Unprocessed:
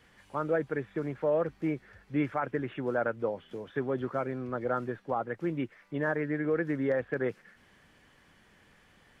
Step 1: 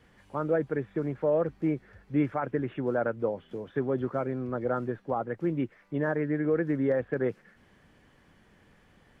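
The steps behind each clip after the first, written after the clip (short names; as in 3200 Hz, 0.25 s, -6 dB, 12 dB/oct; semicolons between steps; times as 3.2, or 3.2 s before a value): tilt shelf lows +4 dB, about 930 Hz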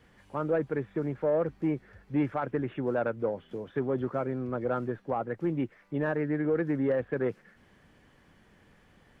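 soft clip -17.5 dBFS, distortion -23 dB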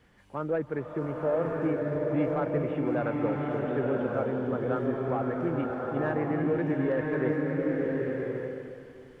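bloom reverb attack 1.12 s, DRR -1.5 dB; gain -1.5 dB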